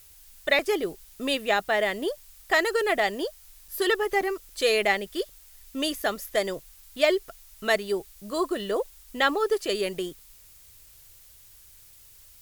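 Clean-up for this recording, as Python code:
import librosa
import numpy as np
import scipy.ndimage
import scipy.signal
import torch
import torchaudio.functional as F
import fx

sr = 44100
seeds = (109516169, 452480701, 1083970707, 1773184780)

y = fx.fix_interpolate(x, sr, at_s=(0.59, 3.68, 4.21, 6.02), length_ms=3.5)
y = fx.noise_reduce(y, sr, print_start_s=11.14, print_end_s=11.64, reduce_db=19.0)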